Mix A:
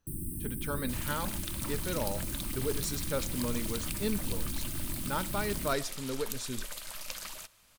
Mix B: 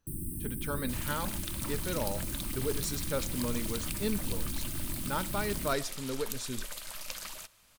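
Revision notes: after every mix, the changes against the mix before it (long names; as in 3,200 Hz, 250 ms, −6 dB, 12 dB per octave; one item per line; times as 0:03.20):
nothing changed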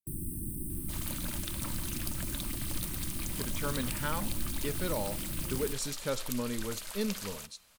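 speech: entry +2.95 s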